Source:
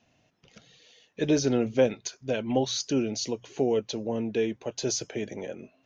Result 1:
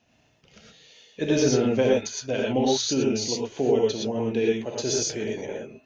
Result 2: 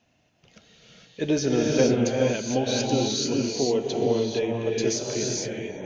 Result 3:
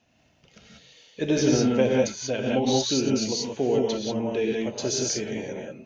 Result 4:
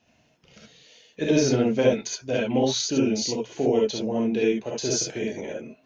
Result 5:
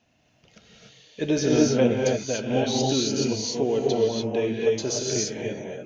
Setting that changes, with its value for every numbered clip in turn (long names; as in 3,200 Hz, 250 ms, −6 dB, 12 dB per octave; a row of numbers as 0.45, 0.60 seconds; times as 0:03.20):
reverb whose tail is shaped and stops, gate: 140, 490, 210, 90, 320 milliseconds